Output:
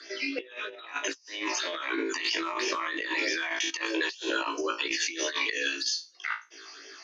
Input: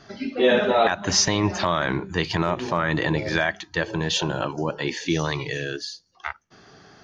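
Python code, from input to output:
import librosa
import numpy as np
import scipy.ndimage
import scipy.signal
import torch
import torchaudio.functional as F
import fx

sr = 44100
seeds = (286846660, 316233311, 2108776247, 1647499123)

y = scipy.signal.sosfilt(scipy.signal.butter(16, 280.0, 'highpass', fs=sr, output='sos'), x)
y = fx.phaser_stages(y, sr, stages=8, low_hz=440.0, high_hz=1300.0, hz=3.1, feedback_pct=15)
y = scipy.signal.sosfilt(scipy.signal.butter(2, 5900.0, 'lowpass', fs=sr, output='sos'), y)
y = fx.tilt_eq(y, sr, slope=3.0)
y = fx.room_flutter(y, sr, wall_m=3.1, rt60_s=0.26)
y = fx.over_compress(y, sr, threshold_db=-31.0, ratio=-0.5)
y = fx.peak_eq(y, sr, hz=780.0, db=-13.0, octaves=0.33)
y = fx.sustainer(y, sr, db_per_s=23.0, at=(1.33, 3.69), fade=0.02)
y = F.gain(torch.from_numpy(y), -1.0).numpy()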